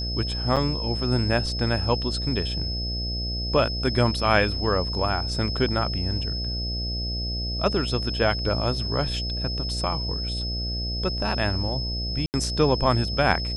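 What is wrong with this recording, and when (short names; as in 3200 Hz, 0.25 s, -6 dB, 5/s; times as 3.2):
buzz 60 Hz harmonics 12 -30 dBFS
tone 5200 Hz -30 dBFS
0.56–0.57 gap 6.6 ms
12.26–12.34 gap 79 ms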